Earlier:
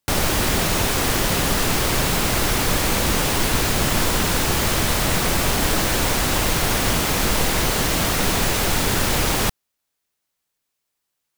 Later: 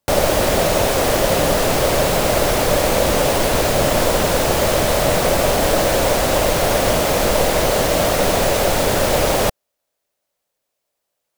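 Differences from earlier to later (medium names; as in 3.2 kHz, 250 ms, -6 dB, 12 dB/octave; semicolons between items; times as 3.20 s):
speech +6.5 dB; background: add peaking EQ 580 Hz +14 dB 0.8 oct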